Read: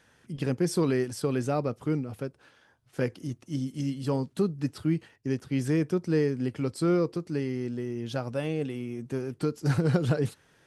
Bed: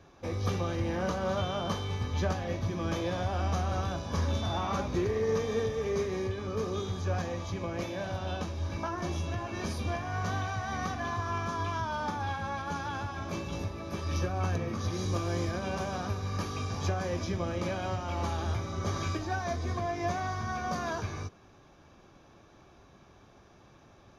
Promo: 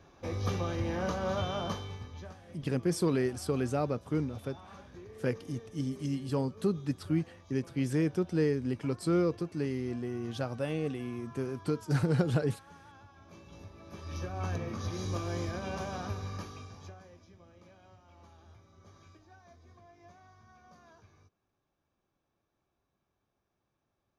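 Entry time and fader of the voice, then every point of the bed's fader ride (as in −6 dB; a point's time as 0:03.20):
2.25 s, −3.0 dB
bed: 0:01.64 −1.5 dB
0:02.38 −19.5 dB
0:13.19 −19.5 dB
0:14.52 −3.5 dB
0:16.22 −3.5 dB
0:17.23 −25 dB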